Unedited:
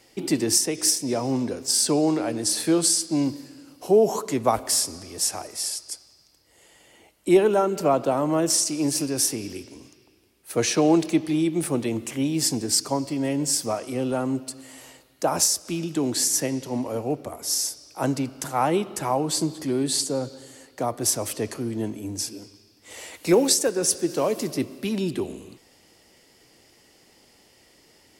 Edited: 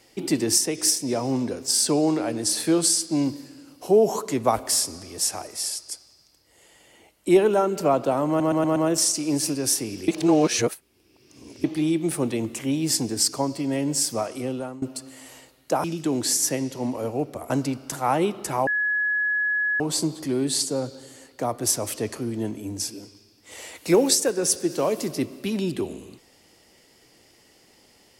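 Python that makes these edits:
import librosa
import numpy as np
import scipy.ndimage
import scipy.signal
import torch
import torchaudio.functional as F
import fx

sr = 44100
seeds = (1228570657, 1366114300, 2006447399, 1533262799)

y = fx.edit(x, sr, fx.stutter(start_s=8.28, slice_s=0.12, count=5),
    fx.reverse_span(start_s=9.6, length_s=1.56),
    fx.fade_out_to(start_s=13.89, length_s=0.45, floor_db=-18.5),
    fx.cut(start_s=15.36, length_s=0.39),
    fx.cut(start_s=17.41, length_s=0.61),
    fx.insert_tone(at_s=19.19, length_s=1.13, hz=1690.0, db=-20.5), tone=tone)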